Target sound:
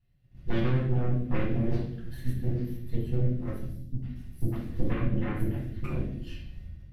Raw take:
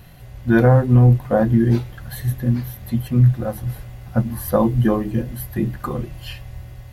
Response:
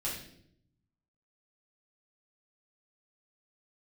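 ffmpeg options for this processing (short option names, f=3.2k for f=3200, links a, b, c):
-filter_complex "[0:a]aeval=exprs='0.668*(cos(1*acos(clip(val(0)/0.668,-1,1)))-cos(1*PI/2))+0.133*(cos(3*acos(clip(val(0)/0.668,-1,1)))-cos(3*PI/2))+0.0106*(cos(5*acos(clip(val(0)/0.668,-1,1)))-cos(5*PI/2))+0.266*(cos(6*acos(clip(val(0)/0.668,-1,1)))-cos(6*PI/2))+0.0668*(cos(8*acos(clip(val(0)/0.668,-1,1)))-cos(8*PI/2))':c=same,aemphasis=mode=reproduction:type=50kf,agate=range=-17dB:threshold=-41dB:ratio=16:detection=peak,equalizer=f=870:w=0.82:g=-11.5,asettb=1/sr,asplit=3[a][b][c];[a]atrim=end=3.664[d];[b]atrim=start=3.66:end=5.84,asetpts=PTS-STARTPTS,afade=t=in:d=0.004:c=qsin,afade=t=out:st=2.176:d=0.004:c=qsin,acrossover=split=590|4500[e][f][g];[e]adelay=260[h];[f]adelay=360[i];[h][i][g]amix=inputs=3:normalize=0,atrim=end_sample=96138[j];[c]atrim=start=5.836[k];[d][j]acrossfade=d=0.004:c1=hsin:c2=qsin[l];[l][k]acrossfade=d=0.004:c1=qsin:c2=hsin,acompressor=threshold=-19dB:ratio=6,bandreject=f=6.8k:w=15[m];[1:a]atrim=start_sample=2205[n];[m][n]afir=irnorm=-1:irlink=0,volume=-7dB"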